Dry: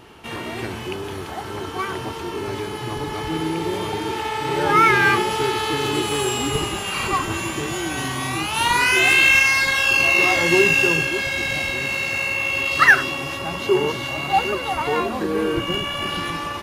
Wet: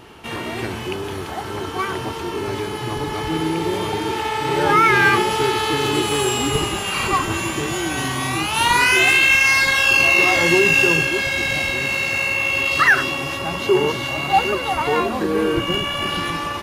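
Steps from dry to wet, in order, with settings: maximiser +7 dB; gain -4.5 dB

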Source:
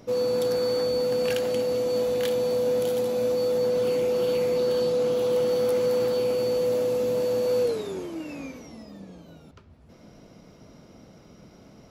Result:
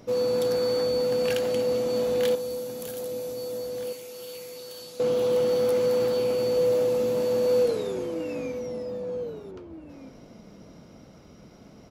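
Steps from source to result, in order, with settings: 2.35–5 pre-emphasis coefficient 0.9; outdoor echo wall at 270 m, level -8 dB

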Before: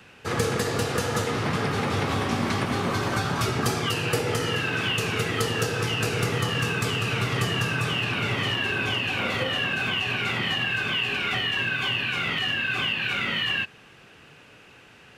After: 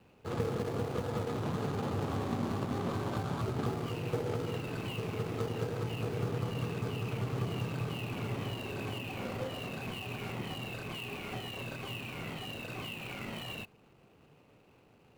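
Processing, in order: median filter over 25 samples; gain -7 dB

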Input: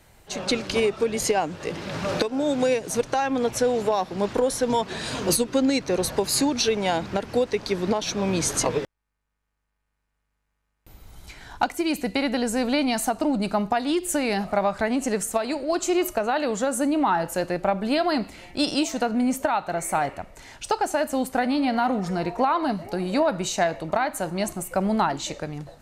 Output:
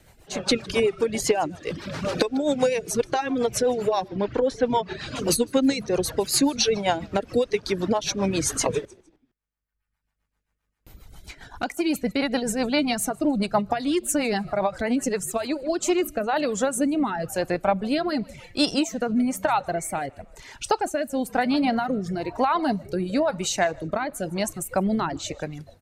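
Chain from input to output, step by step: 4.08–5.16 air absorption 140 m; frequency-shifting echo 0.155 s, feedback 37%, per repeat -58 Hz, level -16 dB; rotary speaker horn 7.5 Hz, later 1 Hz, at 15.22; reverb removal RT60 1.1 s; gain +3 dB

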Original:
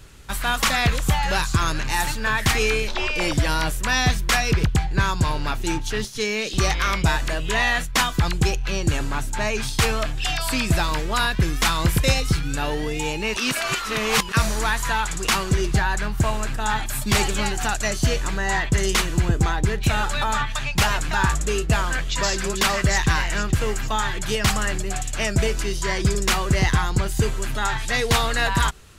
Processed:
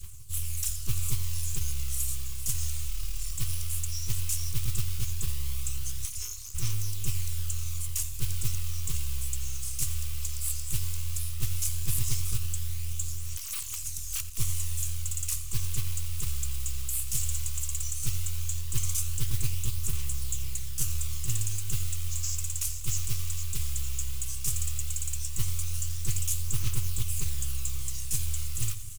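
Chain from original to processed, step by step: inverse Chebyshev band-stop 240–3000 Hz, stop band 50 dB; modulation noise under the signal 16 dB; reverse; upward compressor, threshold -24 dBFS; reverse; tilt shelf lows +3 dB, about 1400 Hz; on a send at -20 dB: reverb RT60 5.7 s, pre-delay 95 ms; on the sum: phaser 0.15 Hz, delay 2.6 ms, feedback 35%; full-wave rectifier; EQ curve 120 Hz 0 dB, 220 Hz -21 dB, 410 Hz -3 dB, 650 Hz -28 dB, 1100 Hz +4 dB, 1700 Hz -2 dB, 2700 Hz +11 dB, 4000 Hz +9 dB, 8200 Hz +11 dB, 14000 Hz +13 dB; echo 87 ms -16.5 dB; Doppler distortion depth 0.2 ms; gain -8.5 dB

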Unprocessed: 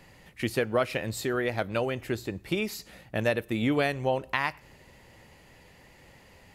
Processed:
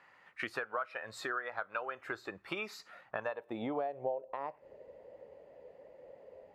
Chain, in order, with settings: band-pass sweep 1300 Hz -> 520 Hz, 2.98–4.31; compressor 5:1, threshold -45 dBFS, peak gain reduction 18 dB; spectral noise reduction 8 dB; gain +10.5 dB

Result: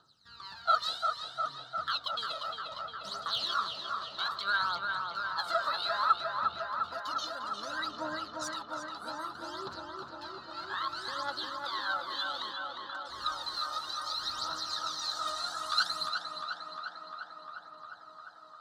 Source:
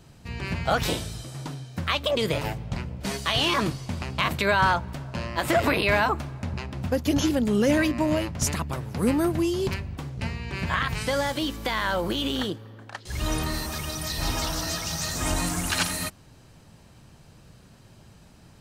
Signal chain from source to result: double band-pass 2300 Hz, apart 1.6 oct; phaser 0.62 Hz, delay 1.7 ms, feedback 75%; tape echo 0.352 s, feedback 87%, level -3.5 dB, low-pass 3000 Hz; gain -1 dB

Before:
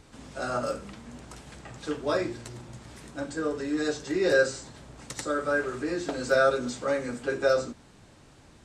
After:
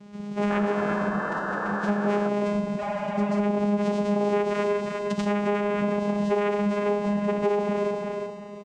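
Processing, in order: non-linear reverb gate 0.41 s flat, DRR 3 dB; in parallel at -9 dB: Schmitt trigger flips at -34 dBFS; on the sum: vocoder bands 4, saw 133 Hz; formant-preserving pitch shift +7.5 st; on a send: feedback echo 0.354 s, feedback 29%, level -10 dB; on the sum: painted sound noise, 0.5–2.29, 280–1800 Hz -38 dBFS; compressor, threshold -30 dBFS, peak gain reduction 12 dB; spectral repair 2.81–3.37, 460–4000 Hz after; gain +8.5 dB

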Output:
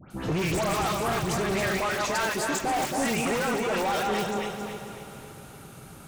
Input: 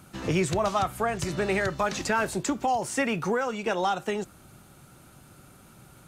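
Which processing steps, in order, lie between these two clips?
regenerating reverse delay 0.137 s, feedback 61%, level -3 dB; 1.8–2.64 low shelf 290 Hz -9 dB; in parallel at -7 dB: wrapped overs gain 18.5 dB; on the sum: dispersion highs, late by 0.109 s, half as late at 2000 Hz; soft clip -22.5 dBFS, distortion -11 dB; diffused feedback echo 0.458 s, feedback 43%, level -12.5 dB

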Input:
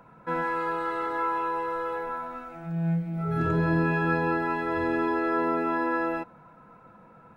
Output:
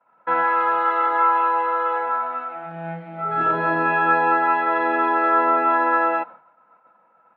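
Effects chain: expander -42 dBFS; speaker cabinet 360–3600 Hz, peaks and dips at 410 Hz -4 dB, 600 Hz +6 dB, 850 Hz +8 dB, 1300 Hz +7 dB, 1900 Hz +4 dB, 3000 Hz +4 dB; gain +4.5 dB

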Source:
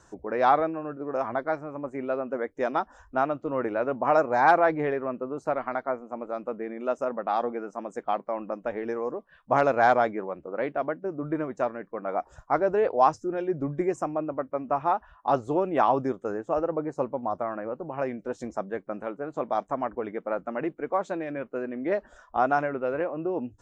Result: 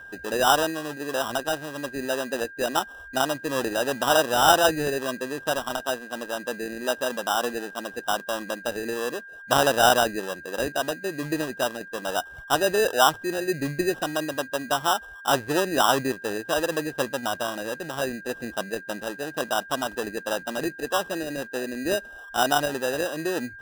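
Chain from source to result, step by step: sample-and-hold 20×; whine 1600 Hz -42 dBFS; gain +1.5 dB

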